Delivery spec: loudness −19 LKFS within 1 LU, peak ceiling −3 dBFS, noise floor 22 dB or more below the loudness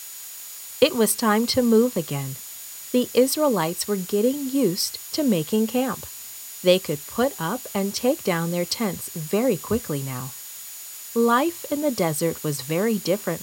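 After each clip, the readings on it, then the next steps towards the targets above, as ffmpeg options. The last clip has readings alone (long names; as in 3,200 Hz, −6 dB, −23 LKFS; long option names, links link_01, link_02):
interfering tone 6,900 Hz; level of the tone −43 dBFS; background noise floor −38 dBFS; target noise floor −45 dBFS; integrated loudness −23.0 LKFS; sample peak −4.0 dBFS; target loudness −19.0 LKFS
→ -af "bandreject=frequency=6900:width=30"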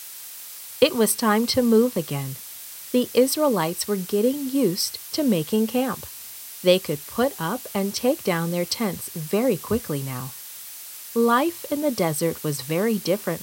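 interfering tone none found; background noise floor −39 dBFS; target noise floor −45 dBFS
→ -af "afftdn=noise_reduction=6:noise_floor=-39"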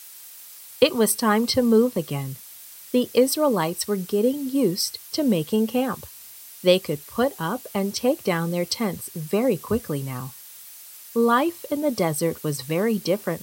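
background noise floor −44 dBFS; target noise floor −45 dBFS
→ -af "afftdn=noise_reduction=6:noise_floor=-44"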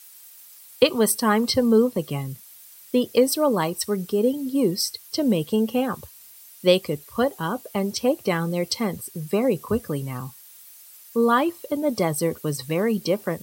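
background noise floor −47 dBFS; integrated loudness −23.0 LKFS; sample peak −4.5 dBFS; target loudness −19.0 LKFS
→ -af "volume=4dB,alimiter=limit=-3dB:level=0:latency=1"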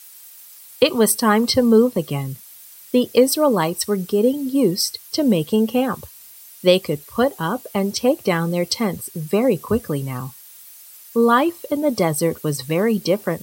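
integrated loudness −19.5 LKFS; sample peak −3.0 dBFS; background noise floor −43 dBFS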